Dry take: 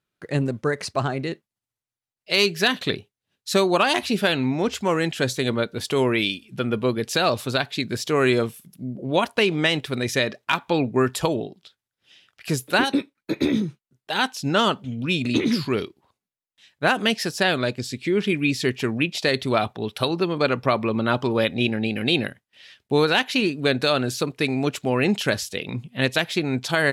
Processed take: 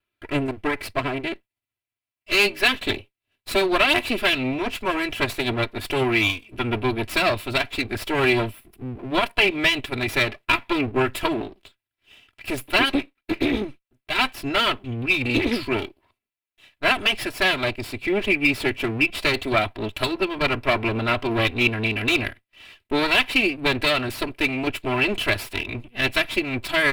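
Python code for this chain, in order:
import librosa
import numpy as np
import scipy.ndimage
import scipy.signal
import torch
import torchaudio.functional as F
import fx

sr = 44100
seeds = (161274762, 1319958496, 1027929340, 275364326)

y = fx.lower_of_two(x, sr, delay_ms=3.0)
y = fx.graphic_eq_15(y, sr, hz=(100, 2500, 6300), db=(6, 9, -10))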